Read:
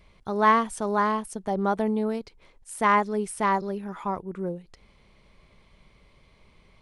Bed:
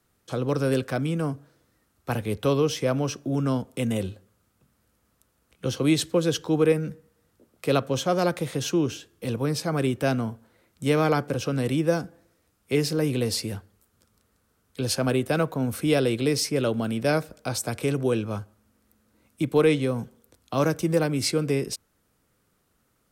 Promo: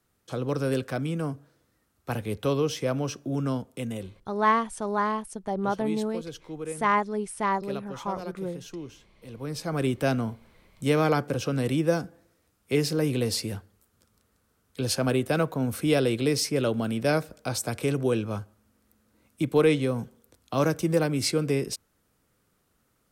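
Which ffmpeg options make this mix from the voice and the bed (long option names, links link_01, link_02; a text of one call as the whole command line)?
ffmpeg -i stem1.wav -i stem2.wav -filter_complex "[0:a]adelay=4000,volume=-2.5dB[link_01];[1:a]volume=11dB,afade=type=out:start_time=3.46:duration=0.89:silence=0.251189,afade=type=in:start_time=9.3:duration=0.6:silence=0.199526[link_02];[link_01][link_02]amix=inputs=2:normalize=0" out.wav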